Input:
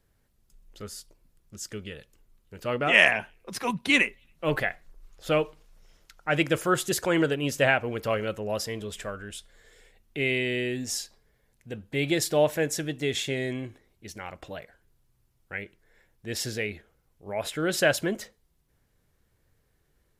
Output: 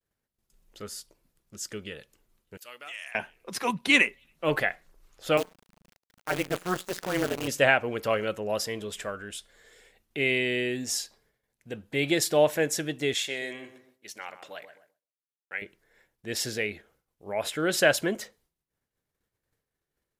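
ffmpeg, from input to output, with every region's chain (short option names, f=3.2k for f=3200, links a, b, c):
-filter_complex "[0:a]asettb=1/sr,asplit=3[a][b][c];[a]atrim=end=2.574[d];[b]atrim=start=2.57:end=3.15,asetpts=PTS-STARTPTS,afade=t=in:d=0.004:c=qsin,afade=t=out:st=0.576:d=0.004:c=qsin,aderivative,acompressor=threshold=-39dB:ratio=4:attack=3.2:release=140:knee=1:detection=peak[e];[c]atrim=start=3.146[f];[d][e]acrossfade=d=0.004:c1=hsin:c2=qsin[g];[g][f]acrossfade=d=0.004:c1=qsin:c2=hsin,asettb=1/sr,asplit=3[h][i][j];[h]atrim=end=5.374[k];[i]atrim=start=5.37:end=7.48,asetpts=PTS-STARTPTS,afade=t=in:d=0.004:c=qsin,afade=t=out:st=2.106:d=0.004:c=qsin,lowpass=f=2.6k:p=1,acrusher=bits=6:dc=4:mix=0:aa=0.000001,tremolo=f=180:d=0.974[l];[j]atrim=start=7.476[m];[k][l]acrossfade=d=0.004:c1=hsin:c2=qsin[n];[n][m]acrossfade=d=0.004:c1=qsin:c2=hsin,asettb=1/sr,asplit=3[o][p][q];[o]atrim=end=13.144[r];[p]atrim=start=13.14:end=15.62,asetpts=PTS-STARTPTS,afade=t=in:d=0.004:c=qsin,afade=t=out:st=2.476:d=0.004:c=qsin,highpass=f=830:p=1,asplit=2[s][t];[t]adelay=128,lowpass=f=1.3k:p=1,volume=-9.5dB,asplit=2[u][v];[v]adelay=128,lowpass=f=1.3k:p=1,volume=0.41,asplit=2[w][x];[x]adelay=128,lowpass=f=1.3k:p=1,volume=0.41,asplit=2[y][z];[z]adelay=128,lowpass=f=1.3k:p=1,volume=0.41[aa];[s][u][w][y][aa]amix=inputs=5:normalize=0,atrim=end_sample=109368[ab];[q]atrim=start=15.616[ac];[r][ab]acrossfade=d=0.004:c1=hsin:c2=qsin[ad];[ad][ac]acrossfade=d=0.004:c1=qsin:c2=hsin,agate=range=-33dB:threshold=-59dB:ratio=3:detection=peak,lowshelf=f=120:g=-11.5,volume=1.5dB"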